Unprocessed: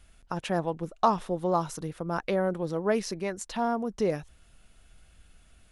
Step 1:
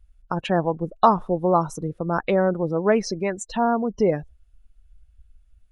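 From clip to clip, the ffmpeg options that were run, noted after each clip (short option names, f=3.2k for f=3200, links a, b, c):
-af "afftdn=nr=25:nf=-40,volume=7dB"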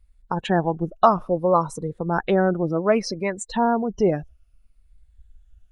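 -af "afftfilt=real='re*pow(10,7/40*sin(2*PI*(0.96*log(max(b,1)*sr/1024/100)/log(2)-(-0.62)*(pts-256)/sr)))':imag='im*pow(10,7/40*sin(2*PI*(0.96*log(max(b,1)*sr/1024/100)/log(2)-(-0.62)*(pts-256)/sr)))':win_size=1024:overlap=0.75"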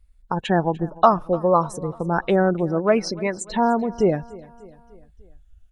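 -af "aecho=1:1:297|594|891|1188:0.0891|0.0481|0.026|0.014,volume=1dB"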